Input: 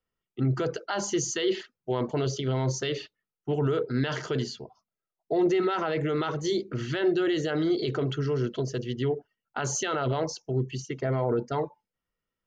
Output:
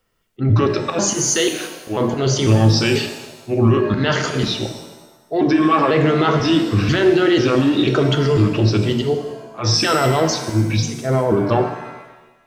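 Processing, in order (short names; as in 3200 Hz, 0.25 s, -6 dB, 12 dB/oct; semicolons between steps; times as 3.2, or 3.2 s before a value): trilling pitch shifter -3 st, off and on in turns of 0.492 s; notches 60/120/180/240/300/360 Hz; auto swell 0.183 s; in parallel at -1.5 dB: compressor, threshold -37 dBFS, peak gain reduction 15 dB; on the sum: maximiser +20 dB; shimmer reverb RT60 1.1 s, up +7 st, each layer -8 dB, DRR 5.5 dB; gain -7.5 dB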